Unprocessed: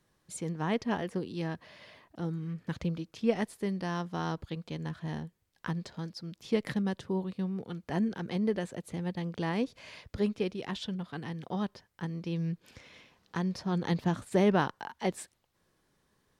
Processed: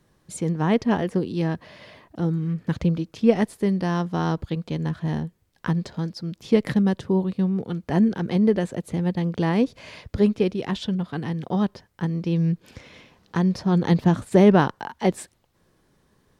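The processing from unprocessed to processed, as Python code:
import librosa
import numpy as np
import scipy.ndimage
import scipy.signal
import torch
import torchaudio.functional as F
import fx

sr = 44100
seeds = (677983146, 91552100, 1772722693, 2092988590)

y = fx.tilt_shelf(x, sr, db=3.0, hz=720.0)
y = F.gain(torch.from_numpy(y), 8.5).numpy()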